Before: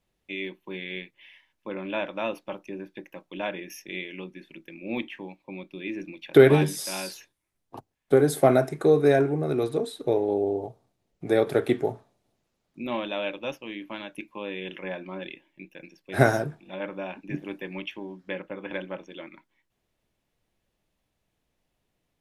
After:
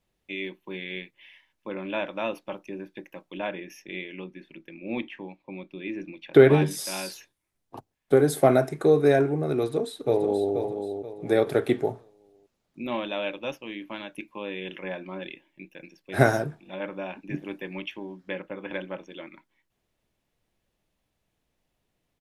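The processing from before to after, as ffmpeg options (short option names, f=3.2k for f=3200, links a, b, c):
-filter_complex "[0:a]asettb=1/sr,asplit=3[a][b][c];[a]atrim=end=3.384[d];[b]atrim=start=3.38:end=6.71,asetpts=PTS-STARTPTS,afade=t=in:d=0.004:c=qsin,afade=t=out:st=3.326:d=0.004:c=qsin,lowpass=f=3.5k:p=1[e];[c]atrim=start=6.706[f];[d][e]acrossfade=d=0.004:c1=hsin:c2=qsin[g];[g][f]acrossfade=d=0.004:c1=qsin:c2=hsin,asplit=2[h][i];[i]afade=t=in:st=9.58:d=0.01,afade=t=out:st=10.54:d=0.01,aecho=0:1:480|960|1440|1920:0.446684|0.156339|0.0547187|0.0191516[j];[h][j]amix=inputs=2:normalize=0"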